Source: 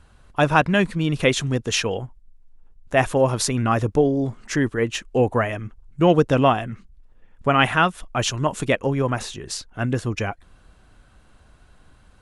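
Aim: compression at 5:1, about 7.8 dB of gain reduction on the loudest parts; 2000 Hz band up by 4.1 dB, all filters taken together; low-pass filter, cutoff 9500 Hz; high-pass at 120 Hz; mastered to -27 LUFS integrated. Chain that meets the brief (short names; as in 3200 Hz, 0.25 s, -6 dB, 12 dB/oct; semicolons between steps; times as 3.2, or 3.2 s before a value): HPF 120 Hz; LPF 9500 Hz; bell 2000 Hz +5.5 dB; compressor 5:1, threshold -19 dBFS; gain -1.5 dB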